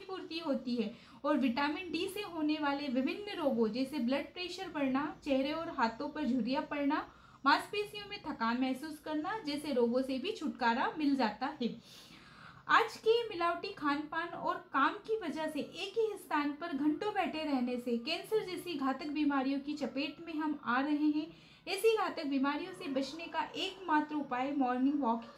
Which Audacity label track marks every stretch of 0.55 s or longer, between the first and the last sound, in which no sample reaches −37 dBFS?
11.730000	12.670000	silence